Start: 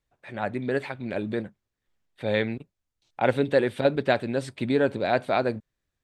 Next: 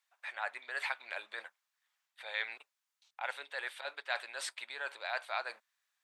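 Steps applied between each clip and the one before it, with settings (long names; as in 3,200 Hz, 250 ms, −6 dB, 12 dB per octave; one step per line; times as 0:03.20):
reversed playback
downward compressor 6 to 1, threshold −30 dBFS, peak gain reduction 14 dB
reversed playback
high-pass filter 910 Hz 24 dB per octave
level +4 dB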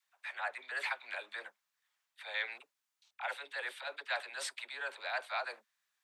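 all-pass dispersion lows, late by 49 ms, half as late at 540 Hz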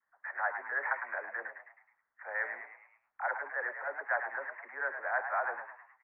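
Butterworth low-pass 1,900 Hz 72 dB per octave
echo with shifted repeats 106 ms, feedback 47%, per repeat +76 Hz, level −8 dB
level +5.5 dB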